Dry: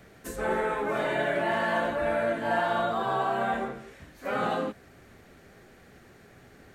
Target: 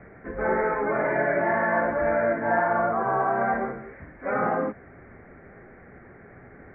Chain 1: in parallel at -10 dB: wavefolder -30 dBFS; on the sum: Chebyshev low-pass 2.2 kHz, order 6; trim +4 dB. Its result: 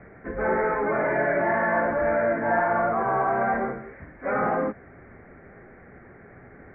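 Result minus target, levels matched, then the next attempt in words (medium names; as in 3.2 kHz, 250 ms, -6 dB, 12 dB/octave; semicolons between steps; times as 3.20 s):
wavefolder: distortion -24 dB
in parallel at -10 dB: wavefolder -41.5 dBFS; on the sum: Chebyshev low-pass 2.2 kHz, order 6; trim +4 dB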